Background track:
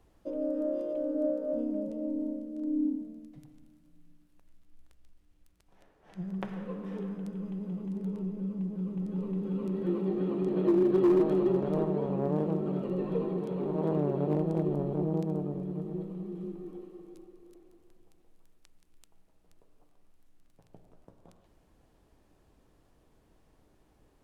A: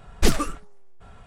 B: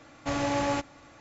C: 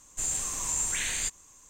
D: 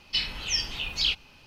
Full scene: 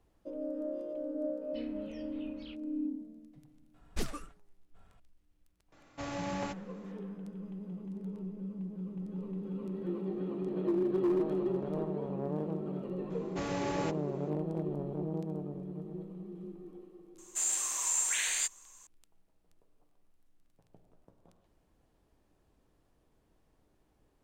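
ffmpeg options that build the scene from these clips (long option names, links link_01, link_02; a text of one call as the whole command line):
ffmpeg -i bed.wav -i cue0.wav -i cue1.wav -i cue2.wav -i cue3.wav -filter_complex "[2:a]asplit=2[link_01][link_02];[0:a]volume=-6dB[link_03];[4:a]lowpass=1600[link_04];[3:a]highpass=620[link_05];[link_04]atrim=end=1.46,asetpts=PTS-STARTPTS,volume=-17dB,afade=type=in:duration=0.004:curve=hsin,afade=type=out:start_time=1.456:duration=0.004:curve=hsin,adelay=1410[link_06];[1:a]atrim=end=1.26,asetpts=PTS-STARTPTS,volume=-16.5dB,afade=type=in:duration=0.004:curve=hsin,afade=type=out:start_time=1.256:duration=0.004:curve=hsin,adelay=3740[link_07];[link_01]atrim=end=1.2,asetpts=PTS-STARTPTS,volume=-10dB,afade=type=in:duration=0.004:curve=hsin,afade=type=out:start_time=1.196:duration=0.004:curve=hsin,adelay=5720[link_08];[link_02]atrim=end=1.2,asetpts=PTS-STARTPTS,volume=-8dB,afade=type=in:duration=0.004:curve=hsin,afade=type=out:start_time=1.196:duration=0.004:curve=hsin,adelay=13100[link_09];[link_05]atrim=end=1.69,asetpts=PTS-STARTPTS,volume=-1dB,afade=type=in:duration=0.004:curve=hsin,afade=type=out:start_time=1.686:duration=0.004:curve=hsin,adelay=17180[link_10];[link_03][link_06][link_07][link_08][link_09][link_10]amix=inputs=6:normalize=0" out.wav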